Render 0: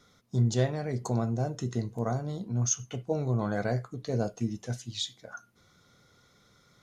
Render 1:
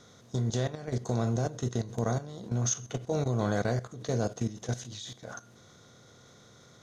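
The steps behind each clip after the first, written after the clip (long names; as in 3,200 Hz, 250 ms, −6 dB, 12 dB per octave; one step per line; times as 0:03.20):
compressor on every frequency bin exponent 0.6
output level in coarse steps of 14 dB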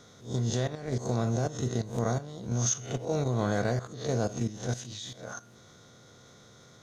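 peak hold with a rise ahead of every peak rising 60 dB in 0.34 s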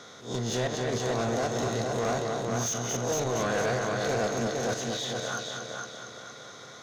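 echo machine with several playback heads 231 ms, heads first and second, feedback 45%, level −7.5 dB
mid-hump overdrive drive 24 dB, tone 3,600 Hz, clips at −12 dBFS
level −6.5 dB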